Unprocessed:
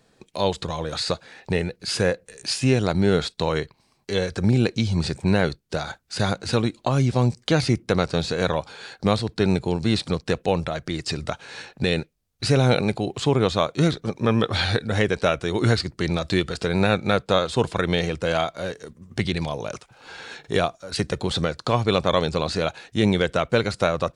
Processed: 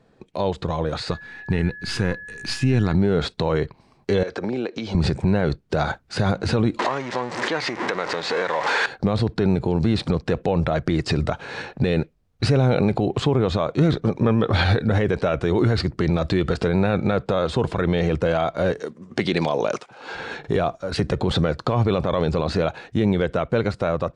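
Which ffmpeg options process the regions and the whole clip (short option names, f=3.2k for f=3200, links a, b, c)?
-filter_complex "[0:a]asettb=1/sr,asplit=3[a][b][c];[a]atrim=end=1.114[d];[b]atrim=start=1.11:end=2.94,asetpts=PTS-STARTPTS,afade=t=in:d=0.004:c=qsin,afade=t=out:st=1.826:d=0.004:c=qsin,aeval=exprs='if(lt(val(0),0),0.708*val(0),val(0))':c=same,aeval=exprs='val(0)+0.01*sin(2*PI*1700*n/s)':c=same,equalizer=f=570:t=o:w=0.94:g=-12.5[e];[c]atrim=start=2.936[f];[d][e]acrossfade=d=0.004:c1=hsin:c2=qsin[g];[g][f]acrossfade=d=0.004:c1=qsin:c2=hsin,asettb=1/sr,asplit=3[h][i][j];[h]atrim=end=4.234[k];[i]atrim=start=4.23:end=4.95,asetpts=PTS-STARTPTS,afade=t=in:d=0.004:c=qsin,afade=t=out:st=0.716:d=0.004:c=qsin,acrossover=split=280 7700:gain=0.0631 1 0.0891[l][m][n];[l][m][n]amix=inputs=3:normalize=0,acompressor=threshold=-32dB:ratio=6:attack=3.2:release=140:knee=1:detection=peak[o];[j]atrim=start=4.946[p];[k][o]acrossfade=d=0.004:c1=hsin:c2=qsin[q];[q][p]acrossfade=d=0.004:c1=qsin:c2=hsin,asettb=1/sr,asplit=3[r][s][t];[r]atrim=end=6.794[u];[s]atrim=start=6.79:end=8.86,asetpts=PTS-STARTPTS,afade=t=in:d=0.004:c=qsin,afade=t=out:st=2.066:d=0.004:c=qsin,aeval=exprs='val(0)+0.5*0.0841*sgn(val(0))':c=same,acompressor=threshold=-23dB:ratio=12:attack=3.2:release=140:knee=1:detection=peak,highpass=480,equalizer=f=650:t=q:w=4:g=-4,equalizer=f=980:t=q:w=4:g=4,equalizer=f=1.9k:t=q:w=4:g=8,lowpass=f=7.7k:w=0.5412,lowpass=f=7.7k:w=1.3066[v];[t]atrim=start=8.856[w];[u][v]acrossfade=d=0.004:c1=hsin:c2=qsin[x];[x][w]acrossfade=d=0.004:c1=qsin:c2=hsin,asettb=1/sr,asplit=3[y][z][aa];[y]atrim=end=18.804[ab];[z]atrim=start=18.8:end=20.15,asetpts=PTS-STARTPTS,afade=t=in:d=0.004:c=qsin,afade=t=out:st=1.346:d=0.004:c=qsin,highpass=250,lowpass=7.7k,highshelf=f=4.7k:g=9[ac];[aa]atrim=start=20.146[ad];[ab][ac]acrossfade=d=0.004:c1=hsin:c2=qsin[ae];[ae][ad]acrossfade=d=0.004:c1=qsin:c2=hsin,lowpass=f=1.2k:p=1,dynaudnorm=f=160:g=17:m=11.5dB,alimiter=level_in=13dB:limit=-1dB:release=50:level=0:latency=1,volume=-9dB"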